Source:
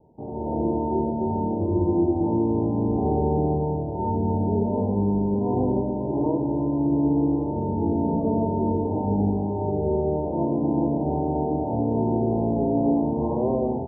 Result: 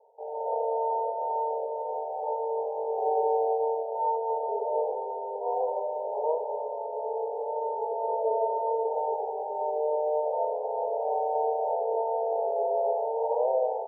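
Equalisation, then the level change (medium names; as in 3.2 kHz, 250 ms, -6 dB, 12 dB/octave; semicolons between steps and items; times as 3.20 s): brick-wall FIR band-pass 420–1000 Hz; +2.0 dB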